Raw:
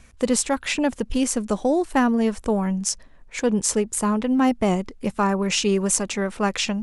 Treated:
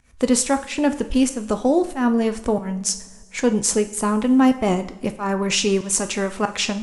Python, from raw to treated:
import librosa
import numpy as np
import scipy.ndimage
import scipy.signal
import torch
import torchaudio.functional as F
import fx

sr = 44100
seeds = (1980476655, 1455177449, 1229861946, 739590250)

y = fx.volume_shaper(x, sr, bpm=93, per_beat=1, depth_db=-23, release_ms=213.0, shape='fast start')
y = fx.rev_double_slope(y, sr, seeds[0], early_s=0.47, late_s=1.9, knee_db=-16, drr_db=8.0)
y = F.gain(torch.from_numpy(y), 2.0).numpy()